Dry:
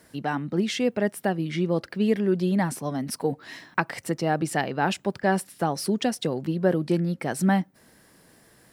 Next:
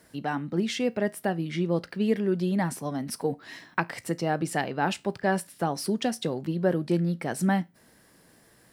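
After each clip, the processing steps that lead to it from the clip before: resonator 57 Hz, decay 0.24 s, harmonics all, mix 40%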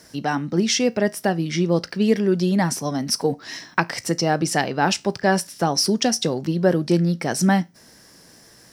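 bell 5600 Hz +13.5 dB 0.53 oct; gain +6.5 dB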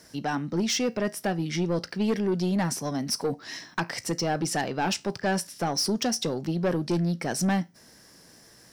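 soft clip -15.5 dBFS, distortion -13 dB; gain -4 dB

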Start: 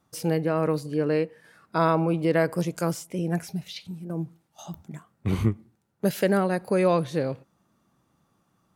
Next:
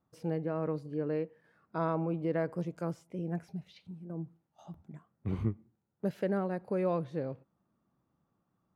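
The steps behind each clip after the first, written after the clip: LPF 1100 Hz 6 dB/oct; gain -8.5 dB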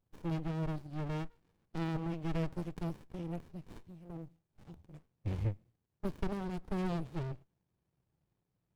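resonant high shelf 1600 Hz +9 dB, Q 1.5; fixed phaser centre 610 Hz, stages 4; running maximum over 65 samples; gain +3 dB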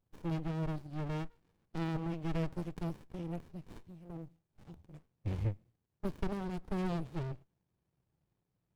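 nothing audible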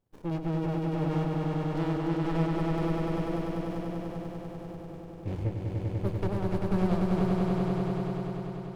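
bell 460 Hz +6 dB 2.5 oct; on a send: swelling echo 98 ms, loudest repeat 5, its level -4 dB

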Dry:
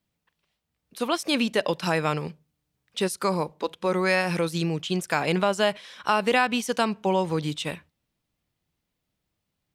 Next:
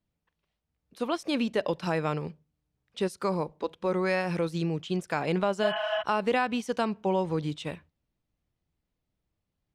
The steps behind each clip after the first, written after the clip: RIAA curve playback; spectral repair 5.66–6, 630–3400 Hz before; tone controls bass -9 dB, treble +5 dB; gain -5 dB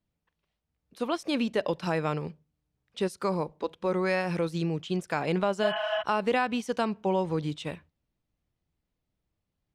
nothing audible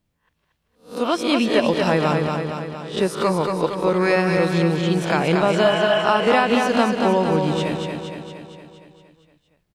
spectral swells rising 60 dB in 0.34 s; on a send: feedback echo 0.232 s, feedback 59%, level -4.5 dB; on the sum: gain +7.5 dB

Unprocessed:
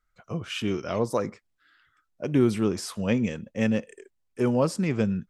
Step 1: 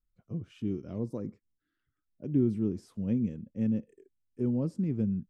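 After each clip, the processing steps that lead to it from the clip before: EQ curve 290 Hz 0 dB, 630 Hz -15 dB, 1200 Hz -21 dB; gain -3.5 dB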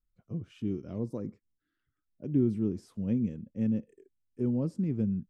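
nothing audible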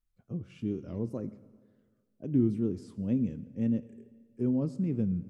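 wow and flutter 91 cents; reverb RT60 1.8 s, pre-delay 6 ms, DRR 14 dB

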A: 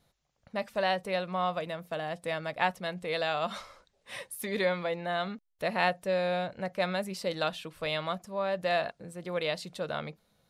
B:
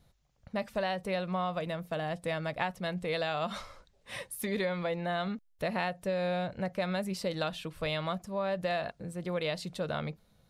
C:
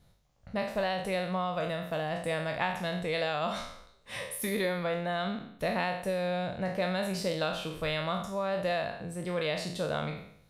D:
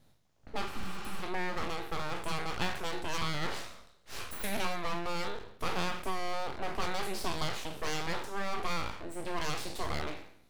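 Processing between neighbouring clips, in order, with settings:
low shelf 160 Hz +11.5 dB; compressor, threshold -28 dBFS, peak gain reduction 8 dB
spectral trails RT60 0.66 s
full-wave rectifier; spectral repair 0.75–1.2, 310–7700 Hz before

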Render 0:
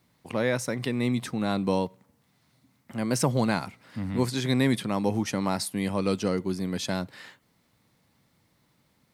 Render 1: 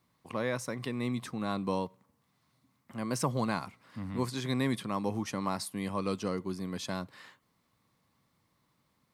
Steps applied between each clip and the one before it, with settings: bell 1100 Hz +9.5 dB 0.26 oct; gain -7 dB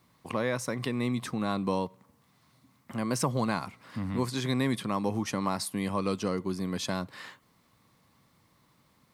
compressor 1.5:1, threshold -42 dBFS, peak gain reduction 6.5 dB; gain +8 dB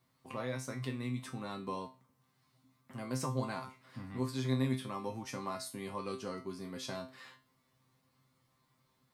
resonator 130 Hz, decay 0.3 s, harmonics all, mix 90%; gain +1 dB

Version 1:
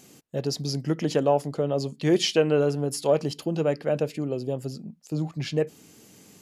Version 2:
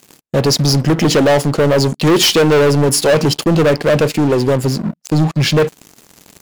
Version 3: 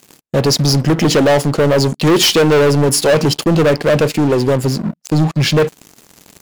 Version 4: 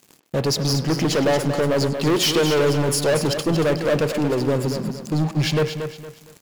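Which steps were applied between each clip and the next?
sample leveller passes 5; gain +1.5 dB
nothing audible
speakerphone echo 0.1 s, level -9 dB; lo-fi delay 0.231 s, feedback 35%, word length 7-bit, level -8 dB; gain -8 dB

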